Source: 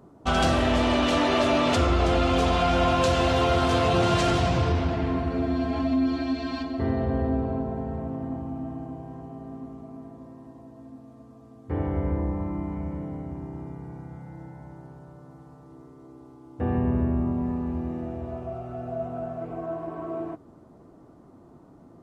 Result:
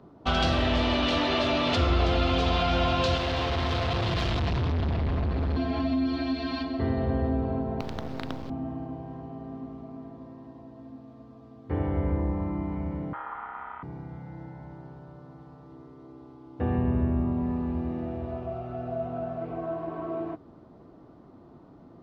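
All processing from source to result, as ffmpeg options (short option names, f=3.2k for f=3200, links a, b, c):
-filter_complex "[0:a]asettb=1/sr,asplit=3[a][b][c];[a]atrim=end=3.174[d];[b]atrim=start=3.17:end=5.57,asetpts=PTS-STARTPTS,afade=t=in:d=0.004:c=qsin,afade=t=out:st=2.396:d=0.004:c=qsin,bandreject=f=1.4k:w=17,asubboost=boost=10:cutoff=130,volume=25dB,asoftclip=hard,volume=-25dB[e];[c]atrim=start=5.566[f];[d][e]acrossfade=d=0.004:c1=hsin:c2=qsin[g];[g][f]acrossfade=d=0.004:c1=qsin:c2=hsin,asettb=1/sr,asplit=3[h][i][j];[h]atrim=end=7.804[k];[i]atrim=start=7.8:end=8.5,asetpts=PTS-STARTPTS,afade=t=in:d=0.004:c=qsin,afade=t=out:st=0.696:d=0.004:c=qsin,highpass=52,acrusher=bits=5:dc=4:mix=0:aa=0.000001[l];[j]atrim=start=8.496[m];[k][l]acrossfade=d=0.004:c1=hsin:c2=qsin[n];[n][m]acrossfade=d=0.004:c1=qsin:c2=hsin,asettb=1/sr,asplit=3[o][p][q];[o]atrim=end=13.134[r];[p]atrim=start=13.13:end=13.83,asetpts=PTS-STARTPTS,afade=t=in:d=0.004:c=qsin,afade=t=out:st=0.696:d=0.004:c=qsin,lowpass=f=2.4k:w=0.5412,lowpass=f=2.4k:w=1.3066,aeval=exprs='val(0)*sin(2*PI*1100*n/s)':c=same,asubboost=boost=9.5:cutoff=97[s];[q]atrim=start=13.826[t];[r][s]acrossfade=d=0.004:c1=hsin:c2=qsin[u];[u][t]acrossfade=d=0.004:c1=qsin:c2=hsin,highshelf=f=6.1k:t=q:w=1.5:g=-14,acrossover=split=140|3000[v][w][x];[w]acompressor=threshold=-27dB:ratio=2[y];[v][y][x]amix=inputs=3:normalize=0"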